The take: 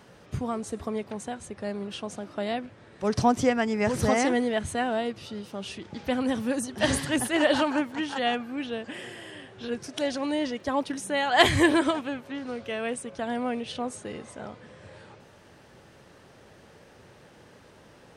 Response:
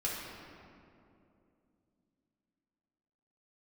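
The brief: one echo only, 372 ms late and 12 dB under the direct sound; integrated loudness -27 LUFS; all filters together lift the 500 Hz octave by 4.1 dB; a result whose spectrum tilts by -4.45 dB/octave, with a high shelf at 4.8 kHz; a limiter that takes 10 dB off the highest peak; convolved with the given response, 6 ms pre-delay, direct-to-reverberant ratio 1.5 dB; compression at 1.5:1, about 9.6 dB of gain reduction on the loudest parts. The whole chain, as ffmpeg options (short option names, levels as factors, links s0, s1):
-filter_complex "[0:a]equalizer=f=500:t=o:g=5,highshelf=f=4800:g=4,acompressor=threshold=0.01:ratio=1.5,alimiter=limit=0.075:level=0:latency=1,aecho=1:1:372:0.251,asplit=2[s0][s1];[1:a]atrim=start_sample=2205,adelay=6[s2];[s1][s2]afir=irnorm=-1:irlink=0,volume=0.501[s3];[s0][s3]amix=inputs=2:normalize=0,volume=1.68"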